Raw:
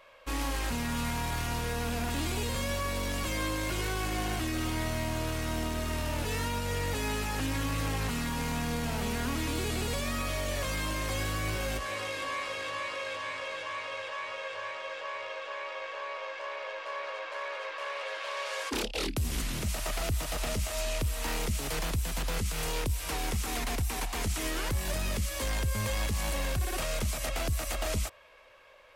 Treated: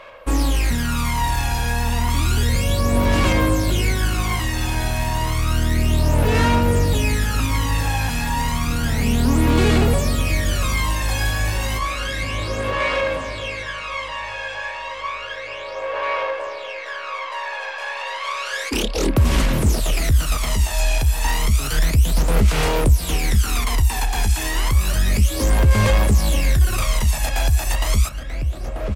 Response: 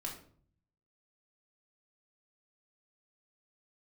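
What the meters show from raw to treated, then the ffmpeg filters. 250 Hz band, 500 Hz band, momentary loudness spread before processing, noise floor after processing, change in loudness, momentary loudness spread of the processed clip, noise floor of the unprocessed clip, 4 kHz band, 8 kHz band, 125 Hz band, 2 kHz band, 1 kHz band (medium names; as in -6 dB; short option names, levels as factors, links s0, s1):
+12.5 dB, +10.5 dB, 5 LU, -31 dBFS, +12.5 dB, 10 LU, -41 dBFS, +9.5 dB, +9.0 dB, +15.0 dB, +10.0 dB, +11.0 dB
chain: -filter_complex "[0:a]asplit=2[s0][s1];[s1]adelay=938,lowpass=f=2400:p=1,volume=0.355,asplit=2[s2][s3];[s3]adelay=938,lowpass=f=2400:p=1,volume=0.44,asplit=2[s4][s5];[s5]adelay=938,lowpass=f=2400:p=1,volume=0.44,asplit=2[s6][s7];[s7]adelay=938,lowpass=f=2400:p=1,volume=0.44,asplit=2[s8][s9];[s9]adelay=938,lowpass=f=2400:p=1,volume=0.44[s10];[s0][s2][s4][s6][s8][s10]amix=inputs=6:normalize=0,aphaser=in_gain=1:out_gain=1:delay=1.2:decay=0.65:speed=0.31:type=sinusoidal,acontrast=87"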